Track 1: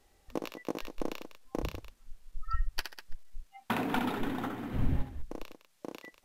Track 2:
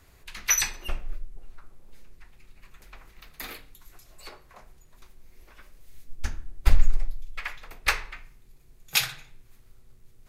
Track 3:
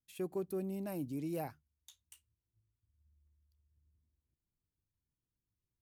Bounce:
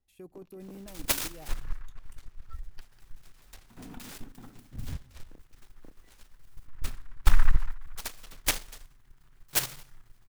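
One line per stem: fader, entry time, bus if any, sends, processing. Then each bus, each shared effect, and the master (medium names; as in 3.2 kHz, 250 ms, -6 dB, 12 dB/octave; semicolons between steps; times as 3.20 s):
-16.0 dB, 0.00 s, no send, tone controls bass +14 dB, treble -1 dB; trance gate "xxx.x.xxx.xxx.x" 175 bpm -12 dB
-1.0 dB, 0.60 s, no send, comb 7.5 ms, depth 48%; delay time shaken by noise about 1.3 kHz, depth 0.44 ms
-3.5 dB, 0.00 s, no send, none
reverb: none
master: level held to a coarse grid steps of 11 dB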